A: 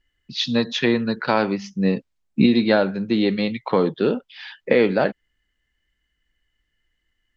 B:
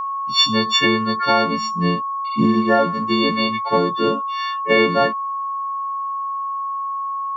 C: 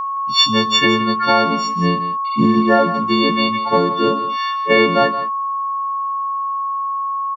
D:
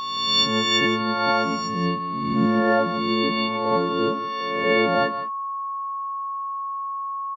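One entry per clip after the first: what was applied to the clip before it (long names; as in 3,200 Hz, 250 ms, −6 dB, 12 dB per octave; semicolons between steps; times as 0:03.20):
every partial snapped to a pitch grid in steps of 4 semitones; healed spectral selection 0:02.28–0:02.82, 2,000–4,900 Hz after; steady tone 1,100 Hz −22 dBFS
single-tap delay 169 ms −13.5 dB; level +2 dB
peak hold with a rise ahead of every peak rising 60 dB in 1.14 s; level −7.5 dB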